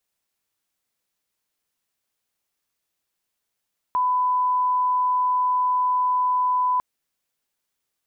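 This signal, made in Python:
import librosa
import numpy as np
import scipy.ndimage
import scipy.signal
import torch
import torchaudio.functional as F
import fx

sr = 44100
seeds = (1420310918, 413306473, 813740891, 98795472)

y = fx.lineup_tone(sr, length_s=2.85, level_db=-18.0)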